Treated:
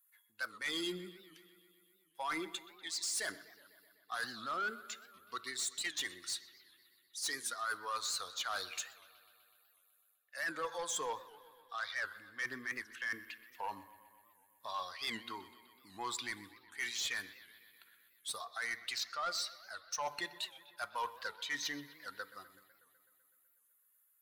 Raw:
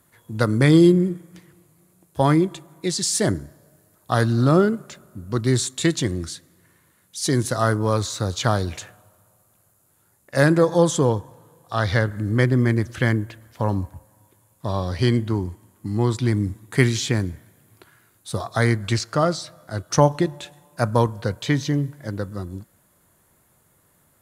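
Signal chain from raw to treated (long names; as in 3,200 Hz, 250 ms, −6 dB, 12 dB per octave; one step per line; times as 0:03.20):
spectral dynamics exaggerated over time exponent 1.5
Chebyshev high-pass filter 1,500 Hz, order 2
reversed playback
downward compressor 8 to 1, threshold −40 dBFS, peak gain reduction 20 dB
reversed playback
soft clipping −39 dBFS, distortion −12 dB
bucket-brigade delay 125 ms, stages 4,096, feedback 72%, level −18.5 dB
on a send at −15.5 dB: convolution reverb RT60 0.70 s, pre-delay 3 ms
on the sum: wow of a warped record 78 rpm, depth 160 cents
level +7.5 dB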